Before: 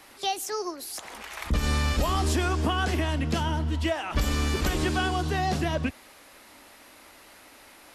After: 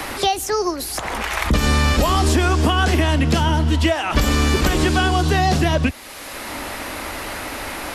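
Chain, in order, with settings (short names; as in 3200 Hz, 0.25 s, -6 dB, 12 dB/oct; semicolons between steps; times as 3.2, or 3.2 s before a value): three-band squash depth 70%; gain +9 dB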